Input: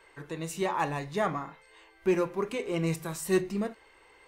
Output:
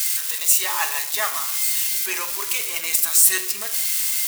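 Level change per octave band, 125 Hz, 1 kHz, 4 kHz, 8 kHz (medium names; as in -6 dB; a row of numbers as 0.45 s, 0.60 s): under -25 dB, +3.0 dB, +19.0 dB, +25.5 dB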